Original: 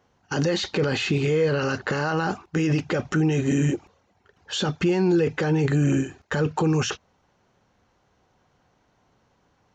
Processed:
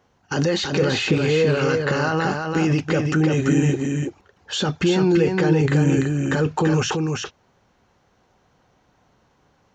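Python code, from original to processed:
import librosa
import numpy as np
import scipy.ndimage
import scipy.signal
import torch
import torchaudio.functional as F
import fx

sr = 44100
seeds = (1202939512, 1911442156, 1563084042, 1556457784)

y = x + 10.0 ** (-4.5 / 20.0) * np.pad(x, (int(336 * sr / 1000.0), 0))[:len(x)]
y = y * librosa.db_to_amplitude(2.5)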